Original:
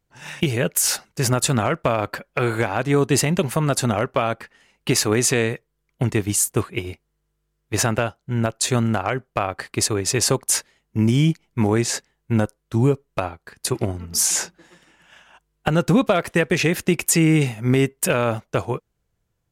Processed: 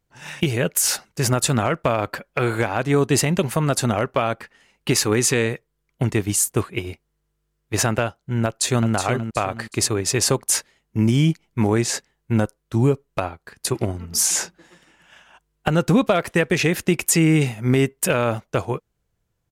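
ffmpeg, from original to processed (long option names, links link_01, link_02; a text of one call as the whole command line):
ffmpeg -i in.wav -filter_complex "[0:a]asettb=1/sr,asplit=3[link_01][link_02][link_03];[link_01]atrim=end=4.924[link_04];[link_02]atrim=start=4.92:end=5.46,asetpts=PTS-STARTPTS,afade=type=in:duration=0.004:curve=qsin,afade=type=out:start_time=0.536:duration=0.004:curve=qsin,asuperstop=centerf=660:order=4:qfactor=5.4[link_05];[link_03]atrim=start=5.456[link_06];[link_04][link_05]acrossfade=duration=0.004:curve1=hsin:curve2=qsin[link_07];[link_07][link_06]acrossfade=duration=0.004:curve1=qsin:curve2=hsin,asplit=2[link_08][link_09];[link_09]afade=type=in:start_time=8.45:duration=0.01,afade=type=out:start_time=8.93:duration=0.01,aecho=0:1:370|740|1110|1480:0.421697|0.147594|0.0516578|0.0180802[link_10];[link_08][link_10]amix=inputs=2:normalize=0" out.wav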